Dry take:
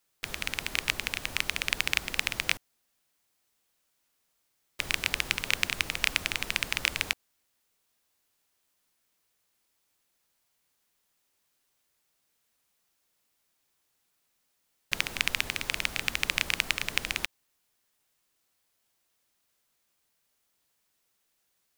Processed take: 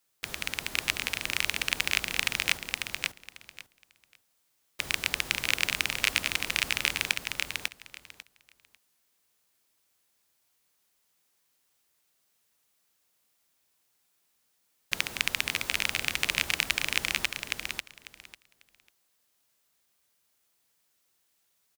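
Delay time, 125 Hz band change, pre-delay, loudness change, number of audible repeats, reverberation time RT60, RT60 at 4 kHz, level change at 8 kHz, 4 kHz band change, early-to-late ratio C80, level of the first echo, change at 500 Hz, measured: 546 ms, -0.5 dB, no reverb, +0.5 dB, 3, no reverb, no reverb, +2.5 dB, +1.5 dB, no reverb, -3.5 dB, +0.5 dB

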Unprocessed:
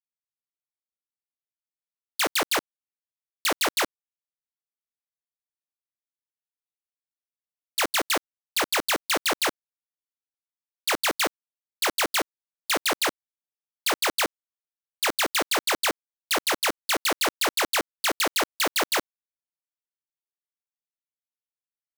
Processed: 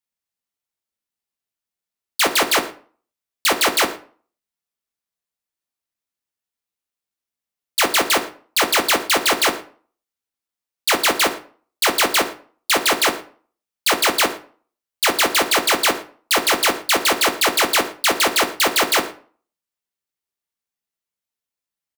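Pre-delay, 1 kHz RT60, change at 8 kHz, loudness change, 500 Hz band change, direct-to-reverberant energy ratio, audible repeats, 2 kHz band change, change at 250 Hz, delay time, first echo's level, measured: 3 ms, 0.45 s, +7.5 dB, +7.5 dB, +7.5 dB, 6.0 dB, 1, +7.5 dB, +7.5 dB, 114 ms, -20.5 dB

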